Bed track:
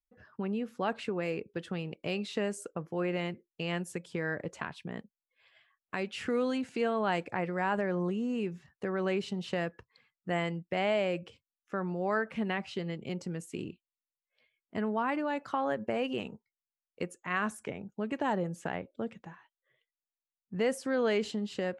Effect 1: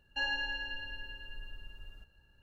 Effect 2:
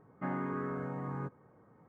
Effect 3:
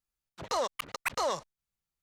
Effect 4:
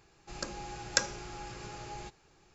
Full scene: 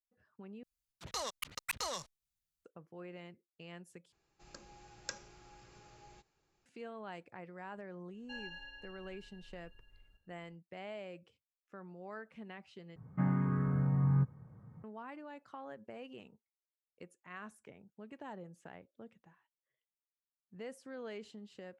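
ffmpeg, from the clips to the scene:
-filter_complex "[0:a]volume=0.15[s0];[3:a]equalizer=f=610:w=0.38:g=-12[s1];[2:a]lowshelf=f=220:t=q:w=1.5:g=13.5[s2];[s0]asplit=4[s3][s4][s5][s6];[s3]atrim=end=0.634[s7];[s1]atrim=end=2.02,asetpts=PTS-STARTPTS,volume=0.944[s8];[s4]atrim=start=2.646:end=4.124[s9];[4:a]atrim=end=2.54,asetpts=PTS-STARTPTS,volume=0.178[s10];[s5]atrim=start=6.656:end=12.964[s11];[s2]atrim=end=1.88,asetpts=PTS-STARTPTS,volume=0.668[s12];[s6]atrim=start=14.836[s13];[1:a]atrim=end=2.42,asetpts=PTS-STARTPTS,volume=0.211,afade=t=in:d=0.004:c=hsin,afade=t=out:st=2.416:d=0.004:c=hsin,adelay=8130[s14];[s7][s8]acrossfade=d=0.004:c1=hsin:c2=hsin[s15];[s15][s9]acrossfade=d=0.004:c1=hsin:c2=hsin[s16];[s16][s10]acrossfade=d=0.004:c1=hsin:c2=hsin[s17];[s17][s11]acrossfade=d=0.004:c1=hsin:c2=hsin[s18];[s18][s12]acrossfade=d=0.004:c1=hsin:c2=hsin[s19];[s19][s13]acrossfade=d=0.004:c1=hsin:c2=hsin[s20];[s20][s14]amix=inputs=2:normalize=0"

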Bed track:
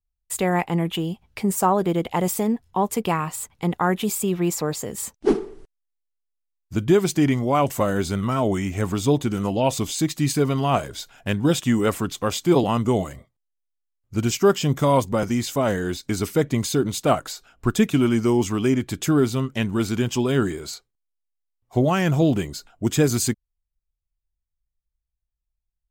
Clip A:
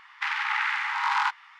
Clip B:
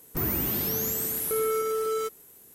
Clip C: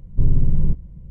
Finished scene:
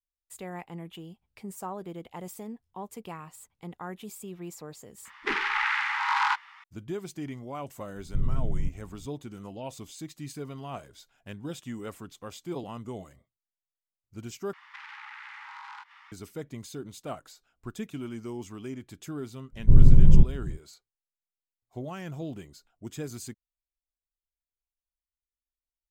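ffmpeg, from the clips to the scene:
-filter_complex "[1:a]asplit=2[s0][s1];[3:a]asplit=2[s2][s3];[0:a]volume=0.126[s4];[s0]acontrast=74[s5];[s1]acompressor=threshold=0.01:ratio=6:attack=3.2:release=140:knee=1:detection=peak[s6];[s3]dynaudnorm=f=130:g=3:m=3.76[s7];[s4]asplit=2[s8][s9];[s8]atrim=end=14.534[s10];[s6]atrim=end=1.59,asetpts=PTS-STARTPTS,volume=0.75[s11];[s9]atrim=start=16.116[s12];[s5]atrim=end=1.59,asetpts=PTS-STARTPTS,volume=0.447,afade=t=in:d=0.004:c=hsin,afade=t=out:st=1.586:d=0.004:c=hsin,adelay=222705S[s13];[s2]atrim=end=1.1,asetpts=PTS-STARTPTS,volume=0.282,afade=t=in:d=0.004:c=hsin,afade=t=out:st=1.096:d=0.004:c=hsin,adelay=7960[s14];[s7]atrim=end=1.1,asetpts=PTS-STARTPTS,volume=0.794,afade=t=in:d=0.1,afade=t=out:st=1:d=0.1,adelay=19500[s15];[s10][s11]acrossfade=d=0.004:c1=hsin:c2=hsin[s16];[s16][s12]acrossfade=d=0.004:c1=hsin:c2=hsin[s17];[s17][s13][s14][s15]amix=inputs=4:normalize=0"

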